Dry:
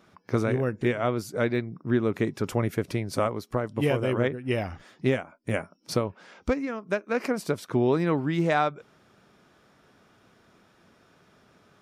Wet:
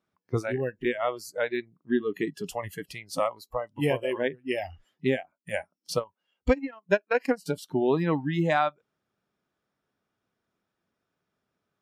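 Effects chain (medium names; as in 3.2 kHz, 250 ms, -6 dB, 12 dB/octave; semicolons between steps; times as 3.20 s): spectral noise reduction 22 dB; 5.97–7.46 s: transient shaper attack +6 dB, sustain -11 dB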